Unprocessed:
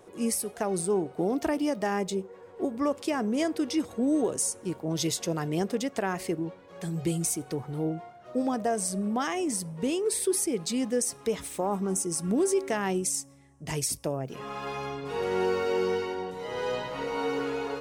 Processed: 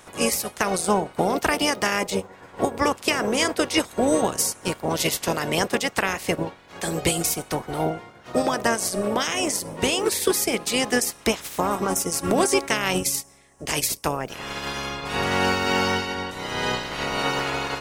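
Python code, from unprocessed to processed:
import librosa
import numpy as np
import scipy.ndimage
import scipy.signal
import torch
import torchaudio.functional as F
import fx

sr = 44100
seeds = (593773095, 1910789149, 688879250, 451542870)

y = fx.spec_clip(x, sr, under_db=21)
y = fx.transient(y, sr, attack_db=3, sustain_db=-3)
y = y * 10.0 ** (5.0 / 20.0)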